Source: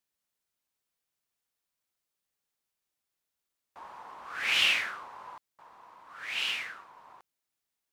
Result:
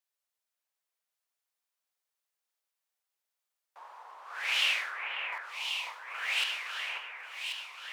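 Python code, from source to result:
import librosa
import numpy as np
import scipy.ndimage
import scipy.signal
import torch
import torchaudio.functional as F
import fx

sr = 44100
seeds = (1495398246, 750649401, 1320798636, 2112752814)

y = fx.leveller(x, sr, passes=2, at=(5.32, 6.44))
y = scipy.signal.sosfilt(scipy.signal.butter(4, 480.0, 'highpass', fs=sr, output='sos'), y)
y = fx.echo_alternate(y, sr, ms=543, hz=2300.0, feedback_pct=72, wet_db=-3.0)
y = F.gain(torch.from_numpy(y), -3.0).numpy()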